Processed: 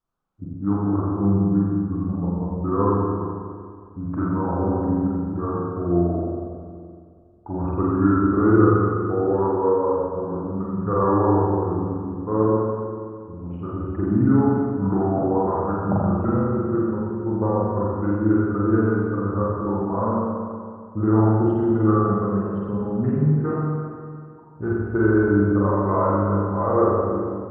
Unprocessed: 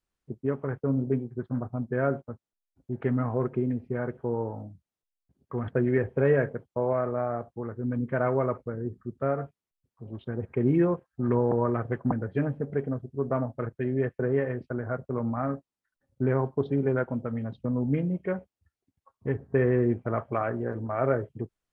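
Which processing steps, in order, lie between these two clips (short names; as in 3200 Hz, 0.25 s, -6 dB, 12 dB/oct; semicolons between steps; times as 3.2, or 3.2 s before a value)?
speed glide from 72% -> 86%; resonant high shelf 1600 Hz -6.5 dB, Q 3; spring tank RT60 2.2 s, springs 40/46 ms, chirp 65 ms, DRR -6.5 dB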